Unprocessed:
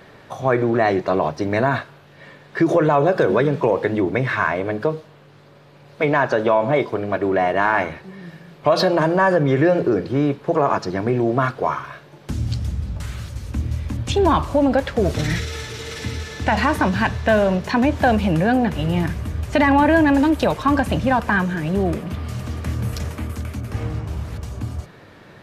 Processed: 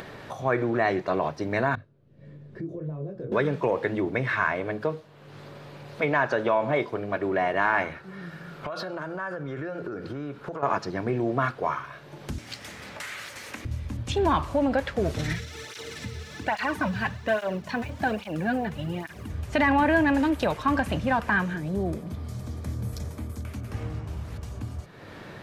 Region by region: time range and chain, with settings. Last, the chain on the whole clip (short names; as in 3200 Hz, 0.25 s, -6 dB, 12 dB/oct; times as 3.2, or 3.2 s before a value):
1.75–3.32 EQ curve 130 Hz 0 dB, 540 Hz -11 dB, 810 Hz -24 dB + detuned doubles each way 19 cents
7.95–10.63 bell 1400 Hz +13 dB 0.3 oct + compressor 5:1, threshold -24 dBFS
12.38–13.65 HPF 490 Hz + sample leveller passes 1 + bell 2000 Hz +9 dB 0.82 oct
15.33–19.3 G.711 law mismatch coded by A + tape flanging out of phase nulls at 1.2 Hz, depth 3.8 ms
21.57–23.45 bell 1800 Hz -7 dB 1.9 oct + notch 2800 Hz, Q 7.4
whole clip: dynamic EQ 1900 Hz, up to +4 dB, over -30 dBFS, Q 0.84; upward compressor, threshold -24 dBFS; gain -7.5 dB